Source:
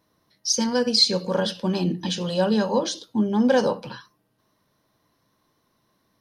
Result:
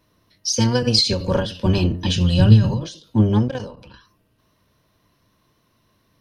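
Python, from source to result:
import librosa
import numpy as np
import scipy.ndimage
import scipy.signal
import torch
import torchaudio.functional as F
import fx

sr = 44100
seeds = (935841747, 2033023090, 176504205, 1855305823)

y = fx.octave_divider(x, sr, octaves=1, level_db=2.0)
y = fx.graphic_eq(y, sr, hz=(125, 500, 1000), db=(12, -7, -5), at=(2.16, 2.83))
y = fx.level_steps(y, sr, step_db=16, at=(3.48, 3.94))
y = fx.peak_eq(y, sr, hz=2700.0, db=6.5, octaves=0.46)
y = fx.notch(y, sr, hz=810.0, q=12.0)
y = fx.end_taper(y, sr, db_per_s=110.0)
y = y * 10.0 ** (3.5 / 20.0)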